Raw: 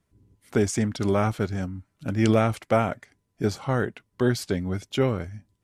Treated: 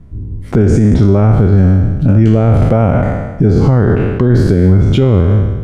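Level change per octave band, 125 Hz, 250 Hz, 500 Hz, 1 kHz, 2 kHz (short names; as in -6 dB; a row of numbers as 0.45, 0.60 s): +20.0, +15.0, +11.5, +7.5, +6.0 dB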